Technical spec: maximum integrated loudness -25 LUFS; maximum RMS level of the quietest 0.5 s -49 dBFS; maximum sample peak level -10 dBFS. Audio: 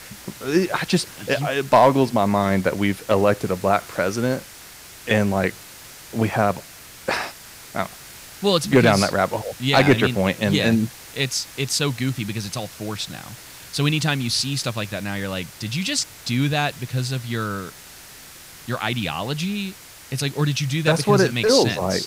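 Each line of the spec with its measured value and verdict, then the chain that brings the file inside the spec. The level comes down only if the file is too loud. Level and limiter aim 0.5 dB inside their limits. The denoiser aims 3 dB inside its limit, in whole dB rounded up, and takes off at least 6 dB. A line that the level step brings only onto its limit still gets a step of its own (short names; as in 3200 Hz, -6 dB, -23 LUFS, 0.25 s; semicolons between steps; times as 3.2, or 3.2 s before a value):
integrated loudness -21.5 LUFS: fail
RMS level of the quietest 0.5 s -43 dBFS: fail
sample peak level -5.0 dBFS: fail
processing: denoiser 6 dB, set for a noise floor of -43 dBFS; gain -4 dB; limiter -10.5 dBFS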